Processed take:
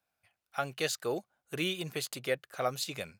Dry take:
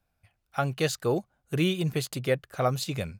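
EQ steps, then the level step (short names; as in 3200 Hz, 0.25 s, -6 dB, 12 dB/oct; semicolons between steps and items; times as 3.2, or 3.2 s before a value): HPF 630 Hz 6 dB/oct; dynamic EQ 1000 Hz, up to -4 dB, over -45 dBFS, Q 2.1; -1.5 dB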